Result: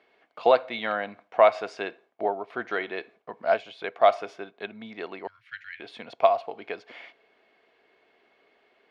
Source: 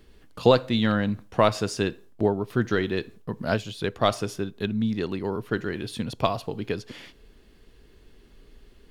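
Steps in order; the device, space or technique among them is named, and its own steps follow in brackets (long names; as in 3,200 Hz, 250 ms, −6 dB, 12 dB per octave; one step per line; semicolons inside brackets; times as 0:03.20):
tin-can telephone (band-pass filter 600–2,500 Hz; hollow resonant body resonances 690/2,200 Hz, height 11 dB, ringing for 25 ms)
0:05.27–0:05.80: elliptic band-stop filter 100–1,800 Hz, stop band 40 dB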